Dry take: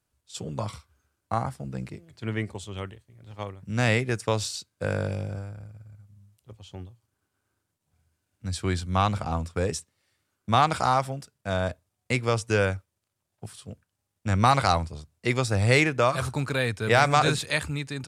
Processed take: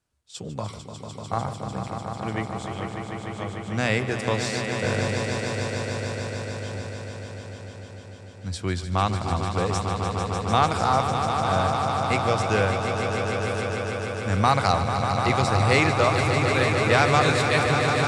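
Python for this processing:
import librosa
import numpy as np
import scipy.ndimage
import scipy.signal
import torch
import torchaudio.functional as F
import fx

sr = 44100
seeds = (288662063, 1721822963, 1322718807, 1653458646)

p1 = scipy.signal.sosfilt(scipy.signal.butter(2, 9000.0, 'lowpass', fs=sr, output='sos'), x)
p2 = fx.hum_notches(p1, sr, base_hz=60, count=2)
y = p2 + fx.echo_swell(p2, sr, ms=149, loudest=5, wet_db=-8, dry=0)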